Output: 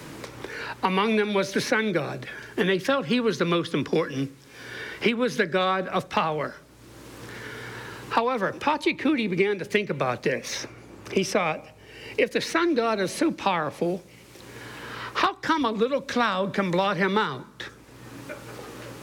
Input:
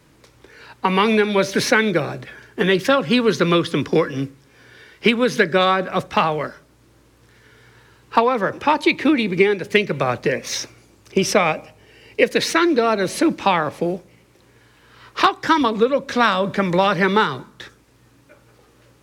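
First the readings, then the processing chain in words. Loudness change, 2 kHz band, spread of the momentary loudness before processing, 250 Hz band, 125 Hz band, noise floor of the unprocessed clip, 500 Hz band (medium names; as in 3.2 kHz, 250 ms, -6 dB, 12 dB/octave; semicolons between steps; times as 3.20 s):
-7.0 dB, -6.5 dB, 10 LU, -6.0 dB, -6.0 dB, -54 dBFS, -6.5 dB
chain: three bands compressed up and down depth 70%; trim -6.5 dB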